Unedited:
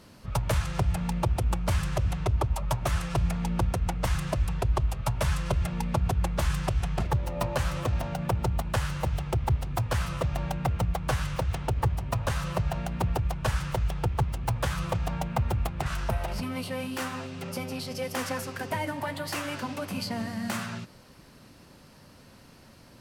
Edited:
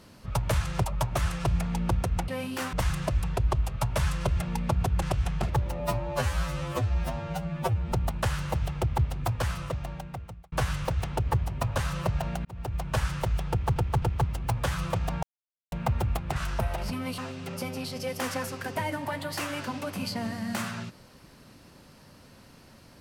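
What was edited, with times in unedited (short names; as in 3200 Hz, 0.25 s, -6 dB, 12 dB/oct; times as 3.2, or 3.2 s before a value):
0.84–2.54 cut
6.27–6.59 cut
7.37–8.43 stretch 2×
9.78–11.03 fade out
12.96–13.39 fade in
14.01–14.27 loop, 3 plays
15.22 insert silence 0.49 s
16.68–17.13 move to 3.98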